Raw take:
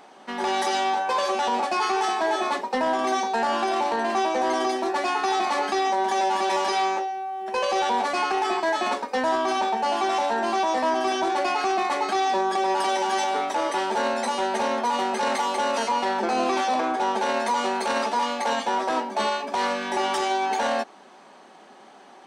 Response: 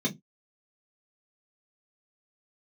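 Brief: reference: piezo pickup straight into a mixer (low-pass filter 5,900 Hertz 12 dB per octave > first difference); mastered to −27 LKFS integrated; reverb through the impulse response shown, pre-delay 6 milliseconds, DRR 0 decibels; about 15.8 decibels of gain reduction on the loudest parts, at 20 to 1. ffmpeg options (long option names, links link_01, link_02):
-filter_complex "[0:a]acompressor=threshold=-36dB:ratio=20,asplit=2[link_01][link_02];[1:a]atrim=start_sample=2205,adelay=6[link_03];[link_02][link_03]afir=irnorm=-1:irlink=0,volume=-6.5dB[link_04];[link_01][link_04]amix=inputs=2:normalize=0,lowpass=5900,aderivative,volume=24dB"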